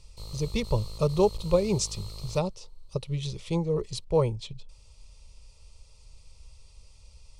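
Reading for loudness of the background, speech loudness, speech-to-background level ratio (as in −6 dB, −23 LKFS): −42.5 LKFS, −29.0 LKFS, 13.5 dB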